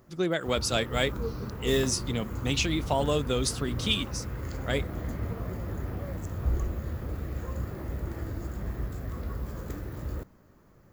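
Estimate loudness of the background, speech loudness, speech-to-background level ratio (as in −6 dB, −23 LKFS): −35.5 LKFS, −29.0 LKFS, 6.5 dB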